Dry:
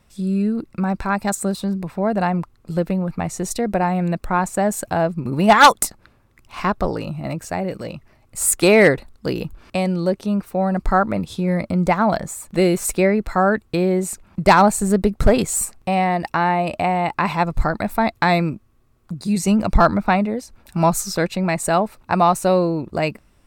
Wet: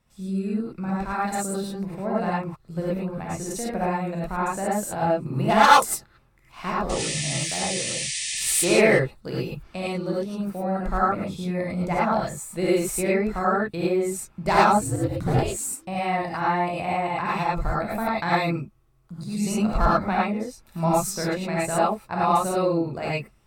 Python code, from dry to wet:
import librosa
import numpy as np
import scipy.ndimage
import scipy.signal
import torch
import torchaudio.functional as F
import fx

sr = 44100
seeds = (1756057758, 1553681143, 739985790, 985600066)

y = fx.spec_paint(x, sr, seeds[0], shape='noise', start_s=6.89, length_s=1.81, low_hz=1700.0, high_hz=9700.0, level_db=-25.0)
y = fx.ring_mod(y, sr, carrier_hz=fx.line((14.69, 59.0), (15.8, 340.0)), at=(14.69, 15.8), fade=0.02)
y = fx.rev_gated(y, sr, seeds[1], gate_ms=130, shape='rising', drr_db=-7.0)
y = y * 10.0 ** (-12.0 / 20.0)